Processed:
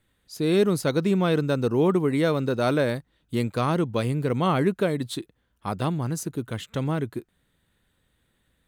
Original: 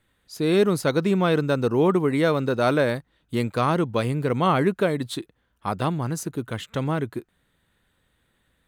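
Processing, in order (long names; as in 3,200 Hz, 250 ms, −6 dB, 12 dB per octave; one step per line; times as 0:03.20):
parametric band 1,200 Hz −4 dB 2.6 octaves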